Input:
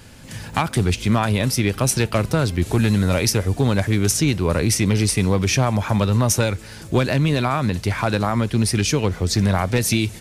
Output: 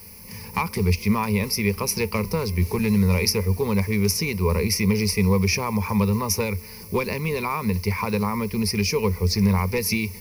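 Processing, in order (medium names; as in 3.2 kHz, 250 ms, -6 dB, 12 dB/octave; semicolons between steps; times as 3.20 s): added noise violet -39 dBFS; rippled EQ curve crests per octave 0.85, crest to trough 17 dB; trim -7 dB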